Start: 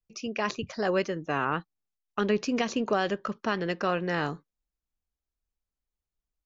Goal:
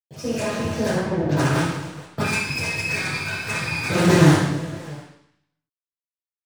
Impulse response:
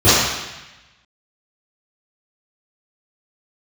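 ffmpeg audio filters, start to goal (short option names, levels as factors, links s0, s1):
-filter_complex "[0:a]aecho=1:1:3.2:0.65,acrossover=split=190[s0][s1];[s1]alimiter=limit=0.1:level=0:latency=1:release=312[s2];[s0][s2]amix=inputs=2:normalize=0,acrossover=split=140|1700[s3][s4][s5];[s3]acompressor=threshold=0.001:ratio=4[s6];[s4]acompressor=threshold=0.0224:ratio=4[s7];[s5]acompressor=threshold=0.00631:ratio=4[s8];[s6][s7][s8]amix=inputs=3:normalize=0,aecho=1:1:60|144|261.6|426.2|656.7:0.631|0.398|0.251|0.158|0.1,asettb=1/sr,asplit=3[s9][s10][s11];[s9]atrim=end=2.214[s12];[s10]atrim=start=2.21:end=3.9,asetpts=PTS-STARTPTS,afade=t=in:d=0.004:c=qsin,afade=t=out:st=1.686:d=0.004:c=qsin,lowpass=f=2400:t=q:w=0.5098,lowpass=f=2400:t=q:w=0.6013,lowpass=f=2400:t=q:w=0.9,lowpass=f=2400:t=q:w=2.563,afreqshift=-2800[s13];[s11]atrim=start=3.896[s14];[s12][s13]acrossfade=d=0.004:c1=hsin:c2=qsin[s15];[s15][s14]acrossfade=d=0.004:c1=qsin:c2=hsin,asubboost=boost=7.5:cutoff=240,acrusher=bits=5:dc=4:mix=0:aa=0.000001,asettb=1/sr,asplit=3[s16][s17][s18];[s16]atrim=end=0.964[s19];[s17]atrim=start=0.96:end=1.36,asetpts=PTS-STARTPTS,afade=t=in:d=0.004:c=qsin,afade=t=out:st=0.396:d=0.004:c=qsin,adynamicsmooth=sensitivity=4:basefreq=750[s20];[s18]atrim=start=1.356[s21];[s19][s20]acrossfade=d=0.004:c1=hsin:c2=qsin[s22];[s22][s21]acrossfade=d=0.004:c1=qsin:c2=hsin[s23];[1:a]atrim=start_sample=2205,asetrate=61740,aresample=44100[s24];[s23][s24]afir=irnorm=-1:irlink=0,volume=0.224"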